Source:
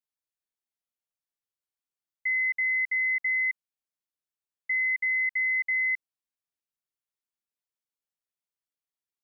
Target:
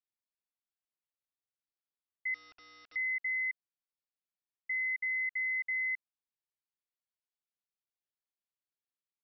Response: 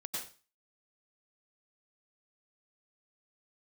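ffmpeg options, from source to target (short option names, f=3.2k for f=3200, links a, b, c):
-filter_complex "[0:a]asettb=1/sr,asplit=3[a][b][c];[a]atrim=end=2.344[d];[b]atrim=start=2.34:end=2.96,asetpts=PTS-STARTPTS,afade=t=in:d=0.004:c=qsin,afade=t=out:st=0.616:d=0.004:c=qsin,aeval=exprs='(mod(94.4*val(0)+1,2)-1)/94.4':c=same[e];[c]atrim=start=2.956[f];[d][e]acrossfade=d=0.004:c1=hsin:c2=qsin[g];[g][f]acrossfade=d=0.004:c1=qsin:c2=hsin,aresample=11025,aresample=44100,volume=-7dB"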